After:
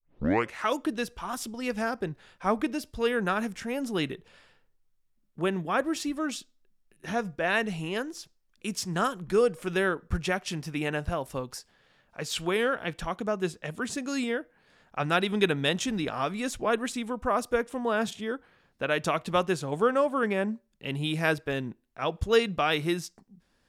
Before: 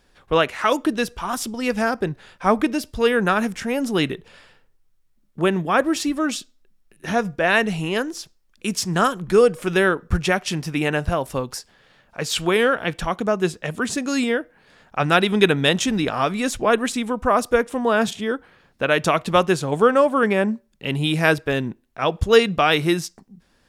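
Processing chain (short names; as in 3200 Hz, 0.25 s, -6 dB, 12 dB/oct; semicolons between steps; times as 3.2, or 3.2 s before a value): tape start at the beginning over 0.54 s; gain -8.5 dB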